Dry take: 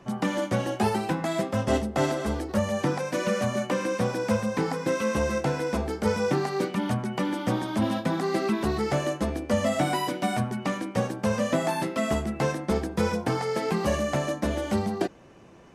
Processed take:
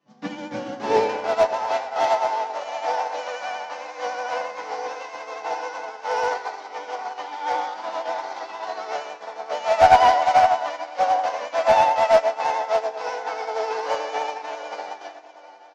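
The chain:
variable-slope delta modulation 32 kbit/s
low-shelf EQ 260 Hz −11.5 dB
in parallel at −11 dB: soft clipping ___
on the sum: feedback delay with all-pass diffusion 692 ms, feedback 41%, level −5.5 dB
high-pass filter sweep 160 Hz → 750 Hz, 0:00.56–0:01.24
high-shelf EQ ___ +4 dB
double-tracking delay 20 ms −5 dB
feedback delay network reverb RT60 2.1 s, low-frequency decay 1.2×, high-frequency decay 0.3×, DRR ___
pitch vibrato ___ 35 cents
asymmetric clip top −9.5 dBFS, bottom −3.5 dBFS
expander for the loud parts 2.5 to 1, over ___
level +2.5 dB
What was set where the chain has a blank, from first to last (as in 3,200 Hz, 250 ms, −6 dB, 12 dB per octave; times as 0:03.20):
−29.5 dBFS, 4,600 Hz, −3.5 dB, 11 Hz, −29 dBFS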